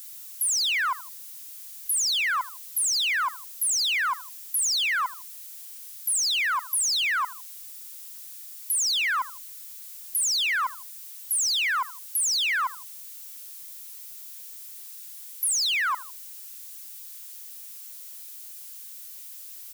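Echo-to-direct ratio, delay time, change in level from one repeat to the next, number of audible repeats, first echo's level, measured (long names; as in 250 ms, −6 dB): −17.0 dB, 79 ms, −7.0 dB, 2, −18.0 dB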